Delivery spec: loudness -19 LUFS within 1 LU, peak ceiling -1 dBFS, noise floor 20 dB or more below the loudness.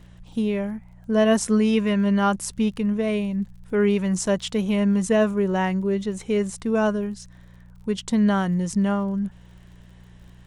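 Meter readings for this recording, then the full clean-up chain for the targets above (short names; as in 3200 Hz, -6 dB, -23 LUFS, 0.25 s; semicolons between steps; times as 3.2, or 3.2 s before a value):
ticks 40/s; hum 60 Hz; harmonics up to 180 Hz; hum level -45 dBFS; loudness -23.0 LUFS; peak -8.5 dBFS; loudness target -19.0 LUFS
-> de-click; de-hum 60 Hz, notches 3; gain +4 dB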